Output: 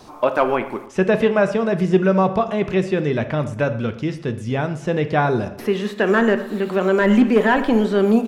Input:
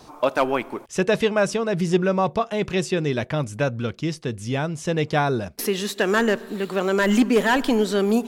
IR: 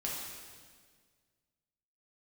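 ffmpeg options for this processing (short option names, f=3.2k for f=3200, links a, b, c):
-filter_complex "[0:a]acrossover=split=2800[a][b];[b]acompressor=threshold=-46dB:ratio=4:attack=1:release=60[c];[a][c]amix=inputs=2:normalize=0,asplit=2[d][e];[e]adelay=116,lowpass=f=3.7k:p=1,volume=-16.5dB,asplit=2[f][g];[g]adelay=116,lowpass=f=3.7k:p=1,volume=0.46,asplit=2[h][i];[i]adelay=116,lowpass=f=3.7k:p=1,volume=0.46,asplit=2[j][k];[k]adelay=116,lowpass=f=3.7k:p=1,volume=0.46[l];[d][f][h][j][l]amix=inputs=5:normalize=0,asplit=2[m][n];[1:a]atrim=start_sample=2205,atrim=end_sample=3969,highshelf=f=6.3k:g=-11.5[o];[n][o]afir=irnorm=-1:irlink=0,volume=-5.5dB[p];[m][p]amix=inputs=2:normalize=0"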